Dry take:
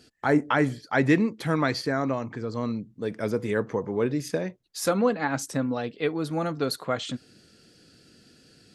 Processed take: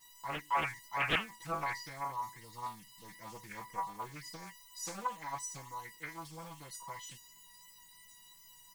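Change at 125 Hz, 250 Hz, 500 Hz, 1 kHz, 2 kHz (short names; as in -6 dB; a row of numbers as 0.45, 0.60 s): -19.0, -25.0, -21.5, -5.5, -8.5 dB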